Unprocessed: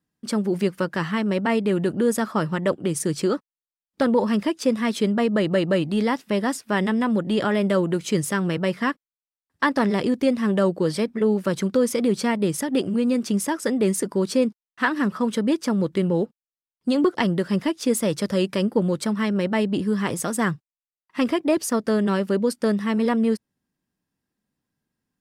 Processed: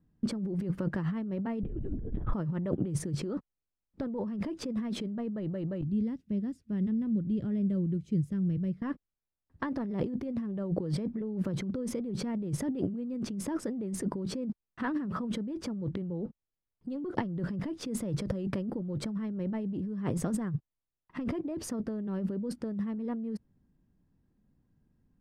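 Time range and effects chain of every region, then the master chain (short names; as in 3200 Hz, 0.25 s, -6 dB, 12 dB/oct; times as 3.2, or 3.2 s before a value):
1.63–2.33 bell 270 Hz +14 dB 0.31 oct + LPC vocoder at 8 kHz whisper
5.81–8.82 HPF 49 Hz + passive tone stack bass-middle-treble 10-0-1
whole clip: tilt -4.5 dB/oct; limiter -10 dBFS; negative-ratio compressor -25 dBFS, ratio -1; gain -7.5 dB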